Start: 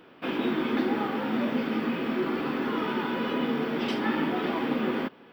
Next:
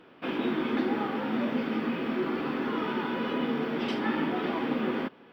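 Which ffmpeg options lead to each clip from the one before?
ffmpeg -i in.wav -af "highshelf=frequency=8600:gain=-9,volume=-1.5dB" out.wav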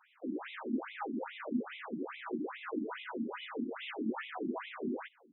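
ffmpeg -i in.wav -af "afftfilt=real='re*between(b*sr/1024,240*pow(2900/240,0.5+0.5*sin(2*PI*2.4*pts/sr))/1.41,240*pow(2900/240,0.5+0.5*sin(2*PI*2.4*pts/sr))*1.41)':imag='im*between(b*sr/1024,240*pow(2900/240,0.5+0.5*sin(2*PI*2.4*pts/sr))/1.41,240*pow(2900/240,0.5+0.5*sin(2*PI*2.4*pts/sr))*1.41)':win_size=1024:overlap=0.75,volume=-2.5dB" out.wav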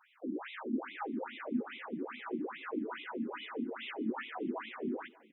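ffmpeg -i in.wav -filter_complex "[0:a]asplit=2[link_01][link_02];[link_02]adelay=591,lowpass=frequency=3600:poles=1,volume=-22.5dB,asplit=2[link_03][link_04];[link_04]adelay=591,lowpass=frequency=3600:poles=1,volume=0.27[link_05];[link_01][link_03][link_05]amix=inputs=3:normalize=0" out.wav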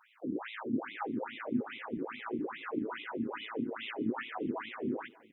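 ffmpeg -i in.wav -af "tremolo=f=110:d=0.462,volume=4dB" out.wav

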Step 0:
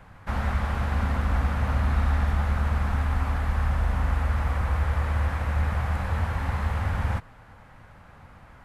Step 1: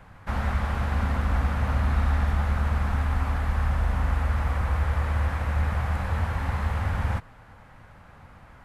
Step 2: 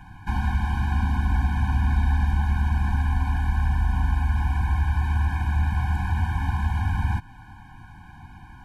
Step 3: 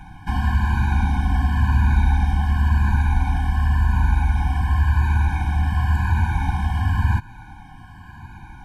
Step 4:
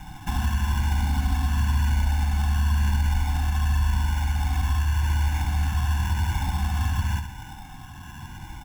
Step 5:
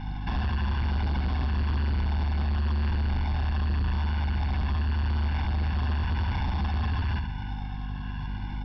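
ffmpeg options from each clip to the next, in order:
ffmpeg -i in.wav -af anull out.wav
ffmpeg -i in.wav -filter_complex "[0:a]asplit=2[link_01][link_02];[link_02]acompressor=threshold=-31dB:ratio=6,volume=-0.5dB[link_03];[link_01][link_03]amix=inputs=2:normalize=0,afftfilt=real='re*eq(mod(floor(b*sr/1024/360),2),0)':imag='im*eq(mod(floor(b*sr/1024/360),2),0)':win_size=1024:overlap=0.75" out.wav
ffmpeg -i in.wav -af "afftfilt=real='re*pow(10,7/40*sin(2*PI*(1.4*log(max(b,1)*sr/1024/100)/log(2)-(-0.93)*(pts-256)/sr)))':imag='im*pow(10,7/40*sin(2*PI*(1.4*log(max(b,1)*sr/1024/100)/log(2)-(-0.93)*(pts-256)/sr)))':win_size=1024:overlap=0.75,volume=3.5dB" out.wav
ffmpeg -i in.wav -filter_complex "[0:a]acrossover=split=1000|3400[link_01][link_02][link_03];[link_01]acompressor=threshold=-24dB:ratio=4[link_04];[link_02]acompressor=threshold=-38dB:ratio=4[link_05];[link_03]acompressor=threshold=-50dB:ratio=4[link_06];[link_04][link_05][link_06]amix=inputs=3:normalize=0,aecho=1:1:68|136|204|272|340|408:0.398|0.191|0.0917|0.044|0.0211|0.0101,acrusher=samples=10:mix=1:aa=0.000001" out.wav
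ffmpeg -i in.wav -af "aeval=exprs='val(0)+0.0224*(sin(2*PI*50*n/s)+sin(2*PI*2*50*n/s)/2+sin(2*PI*3*50*n/s)/3+sin(2*PI*4*50*n/s)/4+sin(2*PI*5*50*n/s)/5)':channel_layout=same,aresample=11025,asoftclip=type=tanh:threshold=-24.5dB,aresample=44100,volume=1.5dB" out.wav

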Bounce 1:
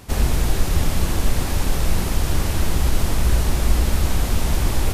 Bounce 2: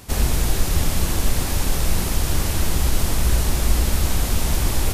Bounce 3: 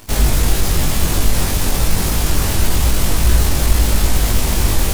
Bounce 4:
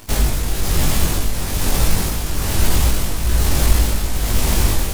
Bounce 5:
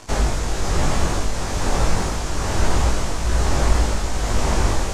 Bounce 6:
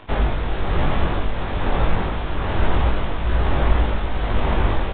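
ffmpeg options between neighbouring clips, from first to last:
ffmpeg -i in.wav -af "highshelf=frequency=4000:gain=6,volume=-1dB" out.wav
ffmpeg -i in.wav -filter_complex "[0:a]asplit=2[link_01][link_02];[link_02]acontrast=83,volume=2.5dB[link_03];[link_01][link_03]amix=inputs=2:normalize=0,acrusher=bits=4:dc=4:mix=0:aa=0.000001,flanger=delay=19:depth=2.4:speed=0.96,volume=-3.5dB" out.wav
ffmpeg -i in.wav -af "tremolo=f=1.1:d=0.53" out.wav
ffmpeg -i in.wav -filter_complex "[0:a]acrossover=split=410|1700[link_01][link_02][link_03];[link_02]acontrast=80[link_04];[link_03]asoftclip=type=tanh:threshold=-28.5dB[link_05];[link_01][link_04][link_05]amix=inputs=3:normalize=0,lowpass=frequency=6900:width_type=q:width=1.8,volume=-3dB" out.wav
ffmpeg -i in.wav -af "aresample=8000,aresample=44100" out.wav

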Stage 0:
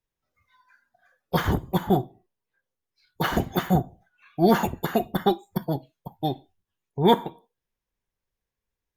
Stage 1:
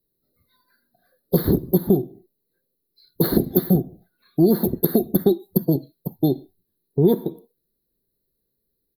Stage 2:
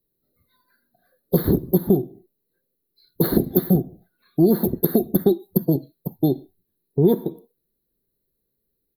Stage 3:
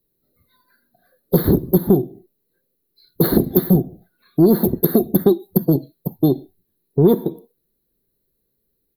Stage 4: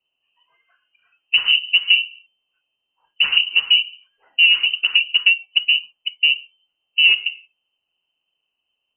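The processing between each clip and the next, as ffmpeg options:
ffmpeg -i in.wav -af "firequalizer=gain_entry='entry(100,0);entry(150,8);entry(260,10);entry(370,12);entry(830,-11);entry(2000,-10);entry(2800,-27);entry(4100,11);entry(6700,-29);entry(11000,15)':delay=0.05:min_phase=1,acompressor=threshold=-18dB:ratio=4,volume=3.5dB" out.wav
ffmpeg -i in.wav -af "equalizer=frequency=5900:width_type=o:width=0.79:gain=-8" out.wav
ffmpeg -i in.wav -af "acontrast=35,volume=-1dB" out.wav
ffmpeg -i in.wav -af "aexciter=amount=7.9:drive=4.4:freq=2300,lowpass=frequency=2600:width_type=q:width=0.5098,lowpass=frequency=2600:width_type=q:width=0.6013,lowpass=frequency=2600:width_type=q:width=0.9,lowpass=frequency=2600:width_type=q:width=2.563,afreqshift=-3100,volume=-1dB" out.wav

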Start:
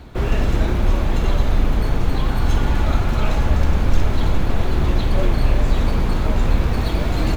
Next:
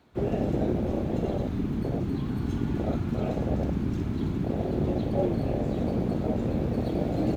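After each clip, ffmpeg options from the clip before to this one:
ffmpeg -i in.wav -af "afwtdn=0.112,highpass=150" out.wav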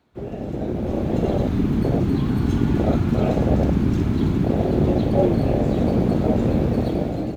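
ffmpeg -i in.wav -af "dynaudnorm=framelen=360:gausssize=5:maxgain=15dB,volume=-4dB" out.wav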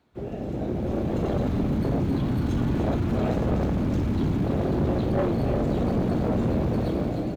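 ffmpeg -i in.wav -af "asoftclip=type=tanh:threshold=-17.5dB,aecho=1:1:300:0.335,volume=-2dB" out.wav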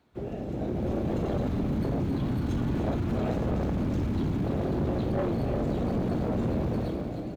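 ffmpeg -i in.wav -af "alimiter=level_in=3dB:limit=-24dB:level=0:latency=1:release=486,volume=-3dB,dynaudnorm=framelen=130:gausssize=9:maxgain=5dB" out.wav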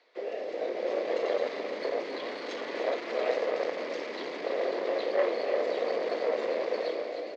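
ffmpeg -i in.wav -af "highpass=frequency=490:width=0.5412,highpass=frequency=490:width=1.3066,equalizer=frequency=490:width_type=q:width=4:gain=7,equalizer=frequency=830:width_type=q:width=4:gain=-7,equalizer=frequency=1400:width_type=q:width=4:gain=-6,equalizer=frequency=2000:width_type=q:width=4:gain=9,equalizer=frequency=4700:width_type=q:width=4:gain=7,lowpass=frequency=5800:width=0.5412,lowpass=frequency=5800:width=1.3066,volume=5dB" out.wav

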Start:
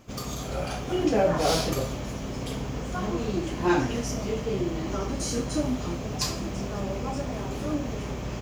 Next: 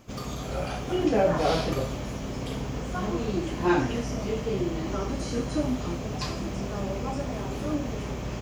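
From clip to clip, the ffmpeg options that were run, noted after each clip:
ffmpeg -i in.wav -filter_complex "[0:a]acrossover=split=4100[link_01][link_02];[link_02]acompressor=threshold=-46dB:ratio=4:attack=1:release=60[link_03];[link_01][link_03]amix=inputs=2:normalize=0" out.wav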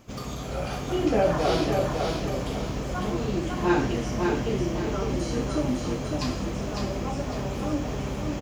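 ffmpeg -i in.wav -af "aecho=1:1:553|1106|1659|2212:0.631|0.221|0.0773|0.0271" out.wav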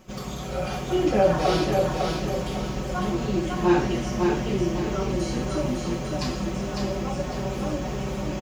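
ffmpeg -i in.wav -af "aecho=1:1:5.4:0.65" out.wav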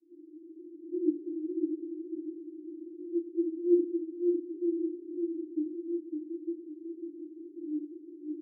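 ffmpeg -i in.wav -af "asuperpass=centerf=320:order=8:qfactor=5.6" out.wav

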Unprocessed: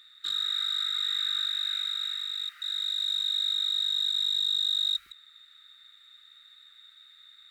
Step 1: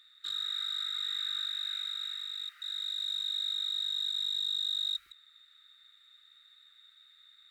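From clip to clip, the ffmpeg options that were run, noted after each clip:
ffmpeg -i in.wav -af "equalizer=frequency=200:width_type=o:width=0.56:gain=-9,volume=-5.5dB" out.wav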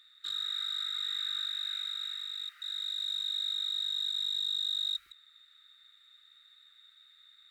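ffmpeg -i in.wav -af anull out.wav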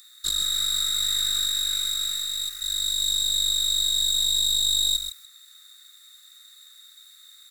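ffmpeg -i in.wav -af "aexciter=amount=8.9:drive=6.9:freq=4800,aeval=exprs='0.133*(cos(1*acos(clip(val(0)/0.133,-1,1)))-cos(1*PI/2))+0.0168*(cos(4*acos(clip(val(0)/0.133,-1,1)))-cos(4*PI/2))+0.00266*(cos(6*acos(clip(val(0)/0.133,-1,1)))-cos(6*PI/2))':channel_layout=same,aecho=1:1:132:0.355,volume=4.5dB" out.wav

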